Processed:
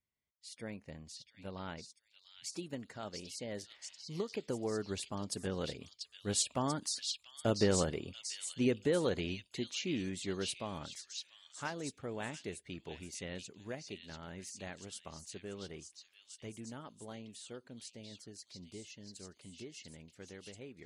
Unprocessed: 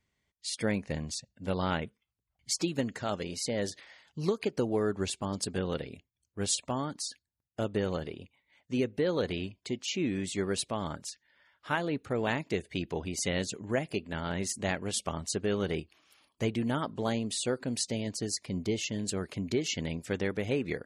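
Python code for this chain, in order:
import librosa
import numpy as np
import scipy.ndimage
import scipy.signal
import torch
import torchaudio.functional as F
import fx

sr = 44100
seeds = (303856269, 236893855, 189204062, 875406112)

y = fx.doppler_pass(x, sr, speed_mps=7, closest_m=8.3, pass_at_s=7.66)
y = fx.echo_stepped(y, sr, ms=689, hz=3900.0, octaves=0.7, feedback_pct=70, wet_db=-0.5)
y = y * 10.0 ** (1.0 / 20.0)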